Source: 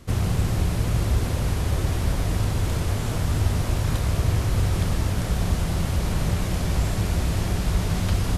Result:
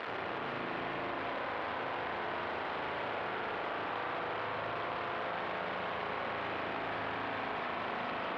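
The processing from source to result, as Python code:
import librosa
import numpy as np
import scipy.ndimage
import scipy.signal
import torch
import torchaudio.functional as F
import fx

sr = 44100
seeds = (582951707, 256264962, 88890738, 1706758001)

p1 = fx.delta_mod(x, sr, bps=64000, step_db=-31.5)
p2 = np.clip(p1, -10.0 ** (-24.5 / 20.0), 10.0 ** (-24.5 / 20.0))
p3 = fx.bandpass_edges(p2, sr, low_hz=690.0, high_hz=4300.0)
p4 = fx.air_absorb(p3, sr, metres=440.0)
p5 = p4 + fx.echo_single(p4, sr, ms=422, db=-6.0, dry=0)
p6 = fx.rev_spring(p5, sr, rt60_s=3.1, pass_ms=(37,), chirp_ms=25, drr_db=-1.0)
y = fx.env_flatten(p6, sr, amount_pct=70)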